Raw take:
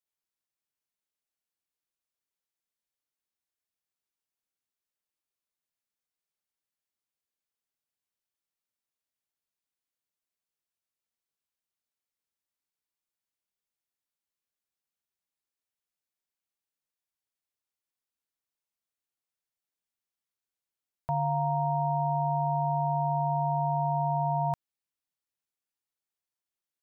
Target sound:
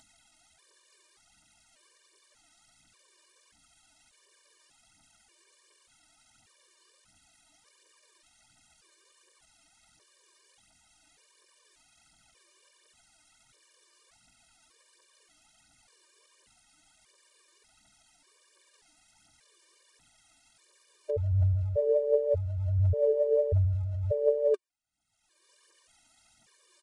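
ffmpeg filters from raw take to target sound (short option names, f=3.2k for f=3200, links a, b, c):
-af "acompressor=mode=upward:threshold=-41dB:ratio=2.5,asetrate=27781,aresample=44100,atempo=1.5874,aphaser=in_gain=1:out_gain=1:delay=3.4:decay=0.58:speed=1.4:type=triangular,aresample=22050,aresample=44100,afftfilt=real='re*gt(sin(2*PI*0.85*pts/sr)*(1-2*mod(floor(b*sr/1024/310),2)),0)':imag='im*gt(sin(2*PI*0.85*pts/sr)*(1-2*mod(floor(b*sr/1024/310),2)),0)':win_size=1024:overlap=0.75,volume=2.5dB"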